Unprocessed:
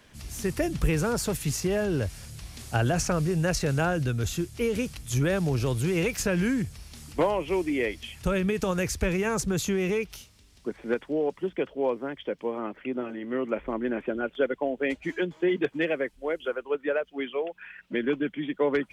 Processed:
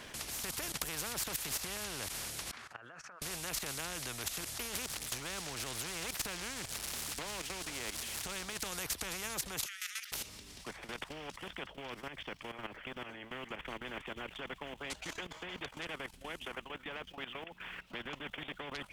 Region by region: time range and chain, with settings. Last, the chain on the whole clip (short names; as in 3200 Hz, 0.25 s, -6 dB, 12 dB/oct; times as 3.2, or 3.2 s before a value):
2.51–3.22 compressor 5:1, threshold -38 dBFS + band-pass 1400 Hz, Q 4.1
4.82–8.67 switching spikes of -31 dBFS + air absorption 60 m
9.66–10.12 brick-wall FIR high-pass 1200 Hz + bell 1900 Hz +12 dB 0.27 oct
whole clip: limiter -19.5 dBFS; level quantiser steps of 16 dB; spectral compressor 4:1; gain +5 dB